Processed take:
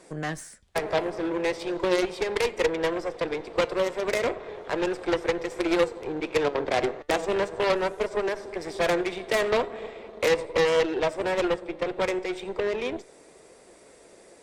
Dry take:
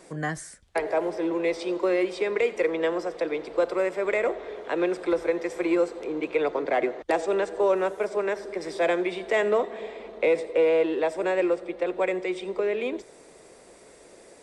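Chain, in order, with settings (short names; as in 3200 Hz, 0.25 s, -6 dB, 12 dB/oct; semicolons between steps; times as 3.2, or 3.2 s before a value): added harmonics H 4 -20 dB, 6 -8 dB, 8 -10 dB, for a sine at -13 dBFS; flange 0.37 Hz, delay 1.9 ms, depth 6.3 ms, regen +87%; gain +3 dB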